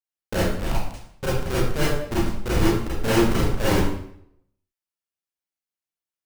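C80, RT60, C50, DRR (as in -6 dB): 3.0 dB, 0.65 s, -1.5 dB, -9.5 dB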